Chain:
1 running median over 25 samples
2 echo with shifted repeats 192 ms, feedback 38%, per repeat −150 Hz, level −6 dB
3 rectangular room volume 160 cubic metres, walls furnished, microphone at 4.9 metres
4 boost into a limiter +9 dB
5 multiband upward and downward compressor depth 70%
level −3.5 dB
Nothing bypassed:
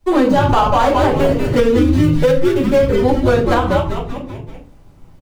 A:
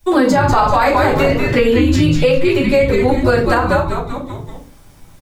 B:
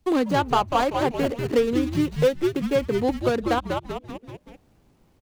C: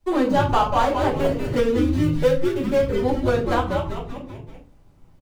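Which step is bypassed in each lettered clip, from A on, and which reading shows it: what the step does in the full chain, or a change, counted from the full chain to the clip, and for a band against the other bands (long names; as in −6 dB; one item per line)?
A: 1, 2 kHz band +5.5 dB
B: 3, change in momentary loudness spread −3 LU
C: 4, change in momentary loudness spread +1 LU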